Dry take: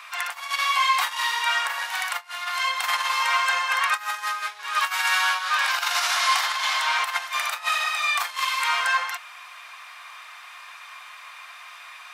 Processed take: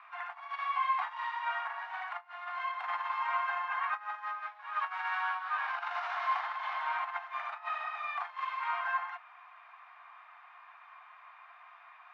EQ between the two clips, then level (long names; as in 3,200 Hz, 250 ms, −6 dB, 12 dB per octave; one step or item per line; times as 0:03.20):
Butterworth high-pass 650 Hz 72 dB per octave
low-pass filter 2,200 Hz 12 dB per octave
spectral tilt −5 dB per octave
−7.5 dB